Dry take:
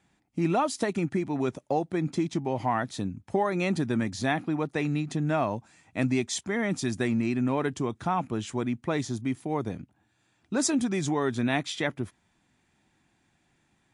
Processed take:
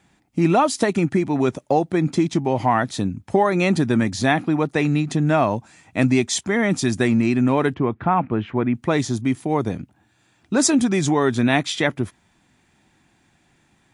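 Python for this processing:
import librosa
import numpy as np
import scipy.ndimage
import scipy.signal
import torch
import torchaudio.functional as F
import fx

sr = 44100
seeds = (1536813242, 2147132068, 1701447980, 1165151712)

y = fx.lowpass(x, sr, hz=2500.0, slope=24, at=(7.74, 8.75))
y = y * 10.0 ** (8.5 / 20.0)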